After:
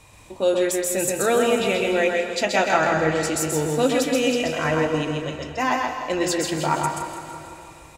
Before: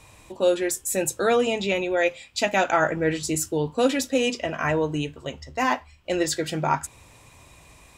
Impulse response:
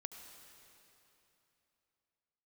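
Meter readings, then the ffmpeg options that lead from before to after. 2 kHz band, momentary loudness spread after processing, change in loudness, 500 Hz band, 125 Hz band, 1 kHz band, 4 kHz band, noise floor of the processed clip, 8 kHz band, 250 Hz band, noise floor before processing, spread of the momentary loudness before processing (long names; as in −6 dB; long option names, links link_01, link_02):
+2.5 dB, 10 LU, +2.5 dB, +2.5 dB, +2.5 dB, +2.5 dB, +2.5 dB, −46 dBFS, +2.5 dB, +2.5 dB, −53 dBFS, 7 LU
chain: -filter_complex "[0:a]aecho=1:1:163|326|489|652|815|978:0.316|0.171|0.0922|0.0498|0.0269|0.0145,asplit=2[link_01][link_02];[1:a]atrim=start_sample=2205,adelay=130[link_03];[link_02][link_03]afir=irnorm=-1:irlink=0,volume=1.5dB[link_04];[link_01][link_04]amix=inputs=2:normalize=0"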